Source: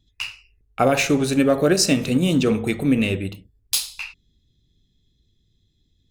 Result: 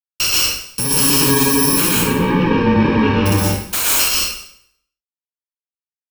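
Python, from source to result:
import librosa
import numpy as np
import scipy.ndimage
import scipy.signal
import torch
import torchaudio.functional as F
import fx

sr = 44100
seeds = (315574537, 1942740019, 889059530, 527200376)

y = fx.bit_reversed(x, sr, seeds[0], block=64)
y = fx.fuzz(y, sr, gain_db=44.0, gate_db=-47.0)
y = fx.lowpass(y, sr, hz=2900.0, slope=24, at=(1.89, 3.26))
y = fx.rev_plate(y, sr, seeds[1], rt60_s=0.67, hf_ratio=0.95, predelay_ms=105, drr_db=-4.0)
y = fx.rider(y, sr, range_db=10, speed_s=2.0)
y = F.gain(torch.from_numpy(y), -4.5).numpy()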